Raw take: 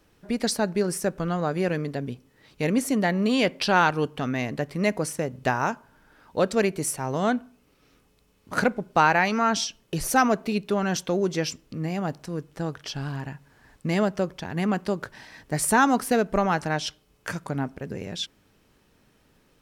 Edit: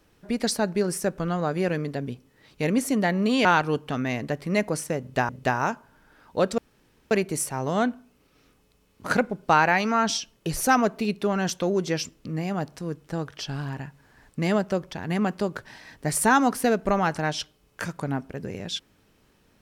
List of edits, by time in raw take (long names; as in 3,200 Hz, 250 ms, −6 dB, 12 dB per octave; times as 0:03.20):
0:03.45–0:03.74: remove
0:05.29–0:05.58: repeat, 2 plays
0:06.58: splice in room tone 0.53 s